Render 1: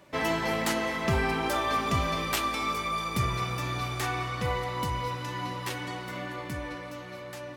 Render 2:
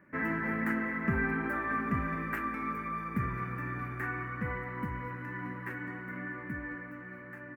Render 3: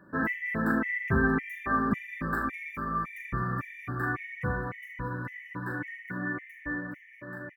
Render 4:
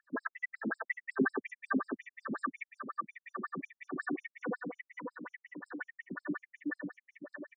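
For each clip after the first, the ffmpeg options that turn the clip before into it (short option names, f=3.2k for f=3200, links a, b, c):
-af "firequalizer=gain_entry='entry(110,0);entry(220,10);entry(350,2);entry(680,-8);entry(1700,11);entry(3400,-27);entry(5300,-26);entry(15000,-7)':delay=0.05:min_phase=1,volume=-7dB"
-af "aecho=1:1:38|72:0.473|0.282,afftfilt=real='re*gt(sin(2*PI*1.8*pts/sr)*(1-2*mod(floor(b*sr/1024/1800),2)),0)':imag='im*gt(sin(2*PI*1.8*pts/sr)*(1-2*mod(floor(b*sr/1024/1800),2)),0)':win_size=1024:overlap=0.75,volume=5dB"
-filter_complex "[0:a]acrossover=split=990[a][b];[a]aeval=exprs='val(0)*(1-0.7/2+0.7/2*cos(2*PI*5.1*n/s))':c=same[c];[b]aeval=exprs='val(0)*(1-0.7/2-0.7/2*cos(2*PI*5.1*n/s))':c=same[d];[c][d]amix=inputs=2:normalize=0,afftfilt=real='re*between(b*sr/1024,240*pow(7000/240,0.5+0.5*sin(2*PI*5.5*pts/sr))/1.41,240*pow(7000/240,0.5+0.5*sin(2*PI*5.5*pts/sr))*1.41)':imag='im*between(b*sr/1024,240*pow(7000/240,0.5+0.5*sin(2*PI*5.5*pts/sr))/1.41,240*pow(7000/240,0.5+0.5*sin(2*PI*5.5*pts/sr))*1.41)':win_size=1024:overlap=0.75,volume=6dB"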